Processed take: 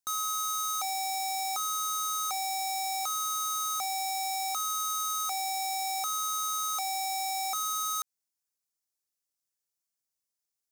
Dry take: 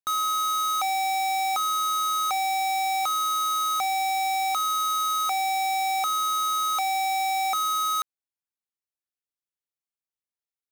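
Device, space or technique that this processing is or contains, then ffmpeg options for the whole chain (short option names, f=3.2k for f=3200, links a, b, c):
over-bright horn tweeter: -af "highshelf=f=4.2k:t=q:w=1.5:g=7.5,alimiter=limit=-23.5dB:level=0:latency=1:release=84"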